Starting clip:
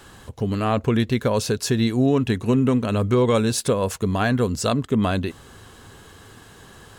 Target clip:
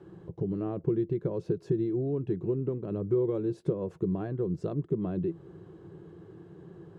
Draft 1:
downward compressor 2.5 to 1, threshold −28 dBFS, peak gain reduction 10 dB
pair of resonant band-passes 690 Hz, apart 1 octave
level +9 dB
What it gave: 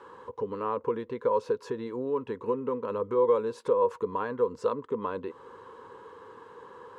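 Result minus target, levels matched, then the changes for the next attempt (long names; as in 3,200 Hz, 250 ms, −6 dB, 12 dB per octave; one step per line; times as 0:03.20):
250 Hz band −8.0 dB
change: pair of resonant band-passes 240 Hz, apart 1 octave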